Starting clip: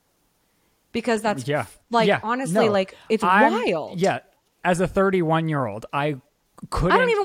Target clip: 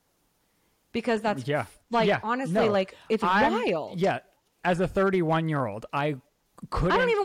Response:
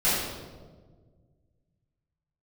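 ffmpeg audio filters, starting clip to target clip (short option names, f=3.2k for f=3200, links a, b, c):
-filter_complex "[0:a]volume=13.5dB,asoftclip=hard,volume=-13.5dB,acrossover=split=4700[a][b];[b]acompressor=threshold=-47dB:ratio=4:attack=1:release=60[c];[a][c]amix=inputs=2:normalize=0,volume=-3.5dB"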